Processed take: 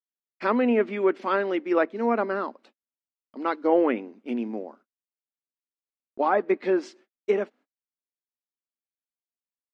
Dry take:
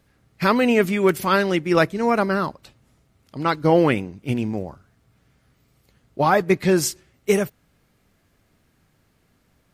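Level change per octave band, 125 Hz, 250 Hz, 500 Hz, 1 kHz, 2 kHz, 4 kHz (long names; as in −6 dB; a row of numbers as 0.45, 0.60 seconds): below −20 dB, −5.5 dB, −4.0 dB, −5.0 dB, −7.5 dB, below −10 dB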